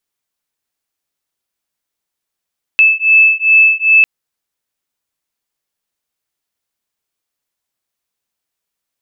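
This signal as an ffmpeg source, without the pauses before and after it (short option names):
-f lavfi -i "aevalsrc='0.335*(sin(2*PI*2620*t)+sin(2*PI*2622.5*t))':d=1.25:s=44100"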